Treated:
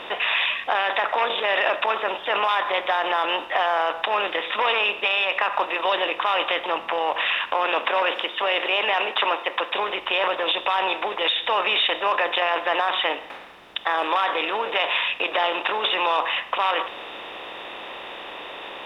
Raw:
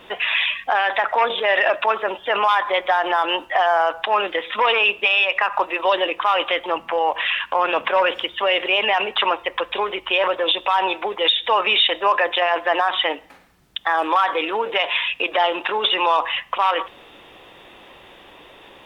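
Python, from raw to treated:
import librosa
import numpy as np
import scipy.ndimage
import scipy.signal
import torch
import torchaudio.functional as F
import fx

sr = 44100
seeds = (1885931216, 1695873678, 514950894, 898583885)

y = fx.bin_compress(x, sr, power=0.6)
y = fx.highpass(y, sr, hz=210.0, slope=24, at=(7.54, 9.73))
y = y * librosa.db_to_amplitude(-7.5)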